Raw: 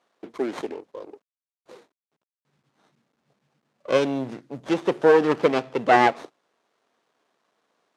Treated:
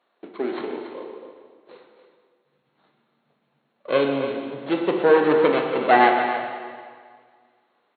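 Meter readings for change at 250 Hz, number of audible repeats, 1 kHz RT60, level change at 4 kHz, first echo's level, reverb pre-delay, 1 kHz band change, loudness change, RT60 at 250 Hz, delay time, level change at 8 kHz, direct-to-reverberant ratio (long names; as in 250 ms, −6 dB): +1.5 dB, 1, 1.8 s, +1.5 dB, −10.0 dB, 8 ms, +2.5 dB, +0.5 dB, 1.8 s, 281 ms, can't be measured, 1.0 dB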